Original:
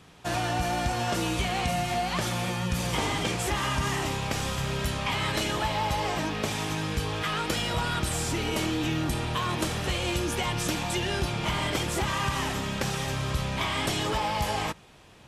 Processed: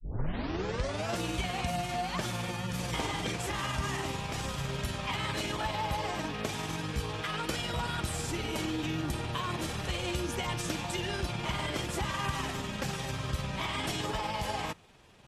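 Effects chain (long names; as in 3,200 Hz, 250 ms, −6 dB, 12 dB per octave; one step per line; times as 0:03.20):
turntable start at the beginning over 1.16 s
granular cloud 100 ms, grains 20 per second, spray 13 ms, pitch spread up and down by 0 semitones
level −4 dB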